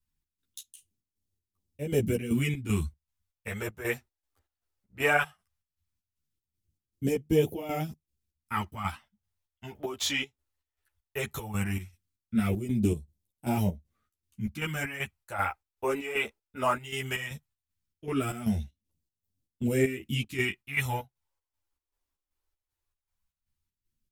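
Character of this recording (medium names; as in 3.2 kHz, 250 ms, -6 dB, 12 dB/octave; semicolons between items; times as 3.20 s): phasing stages 2, 0.17 Hz, lowest notch 160–1300 Hz; chopped level 2.6 Hz, depth 65%, duty 60%; a shimmering, thickened sound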